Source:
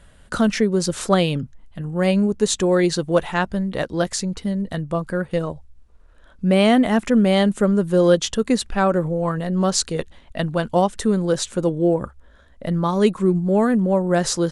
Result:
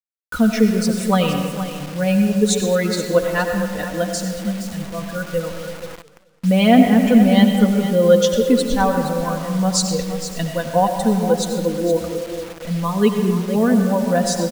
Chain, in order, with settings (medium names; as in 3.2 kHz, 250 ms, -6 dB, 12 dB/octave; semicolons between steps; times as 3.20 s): expander on every frequency bin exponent 1.5; band-stop 1.2 kHz, Q 26; comb 4.1 ms, depth 75%; 4.64–5.16 s: transient shaper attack -8 dB, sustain +3 dB; 9.80–10.69 s: bass shelf 190 Hz +4.5 dB; delay 469 ms -11.5 dB; algorithmic reverb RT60 1.7 s, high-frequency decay 0.5×, pre-delay 50 ms, DRR 5 dB; expander -35 dBFS; word length cut 6-bit, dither none; modulated delay 218 ms, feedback 44%, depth 189 cents, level -20 dB; trim +1 dB